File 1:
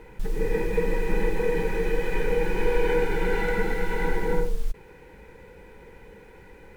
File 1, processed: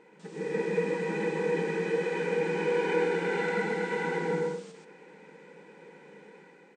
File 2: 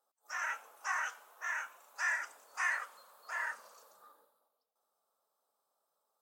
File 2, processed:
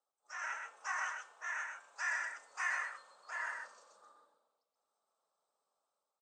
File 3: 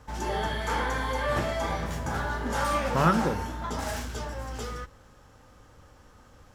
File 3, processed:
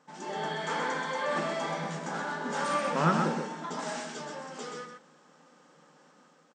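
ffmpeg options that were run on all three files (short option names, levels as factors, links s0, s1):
-filter_complex "[0:a]afftfilt=real='re*between(b*sr/4096,140,9000)':imag='im*between(b*sr/4096,140,9000)':win_size=4096:overlap=0.75,bandreject=f=225.5:t=h:w=4,bandreject=f=451:t=h:w=4,bandreject=f=676.5:t=h:w=4,bandreject=f=902:t=h:w=4,bandreject=f=1127.5:t=h:w=4,bandreject=f=1353:t=h:w=4,bandreject=f=1578.5:t=h:w=4,bandreject=f=1804:t=h:w=4,bandreject=f=2029.5:t=h:w=4,bandreject=f=2255:t=h:w=4,bandreject=f=2480.5:t=h:w=4,bandreject=f=2706:t=h:w=4,bandreject=f=2931.5:t=h:w=4,bandreject=f=3157:t=h:w=4,bandreject=f=3382.5:t=h:w=4,bandreject=f=3608:t=h:w=4,bandreject=f=3833.5:t=h:w=4,bandreject=f=4059:t=h:w=4,bandreject=f=4284.5:t=h:w=4,bandreject=f=4510:t=h:w=4,bandreject=f=4735.5:t=h:w=4,bandreject=f=4961:t=h:w=4,bandreject=f=5186.5:t=h:w=4,bandreject=f=5412:t=h:w=4,bandreject=f=5637.5:t=h:w=4,dynaudnorm=f=180:g=5:m=1.78,asplit=2[s0][s1];[s1]aecho=0:1:128:0.562[s2];[s0][s2]amix=inputs=2:normalize=0,volume=0.398"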